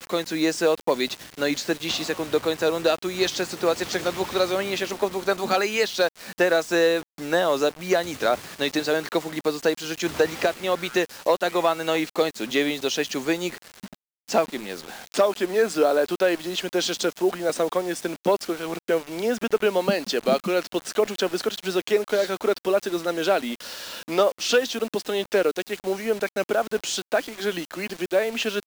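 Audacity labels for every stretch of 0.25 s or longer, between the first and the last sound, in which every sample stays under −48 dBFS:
13.950000	14.280000	silence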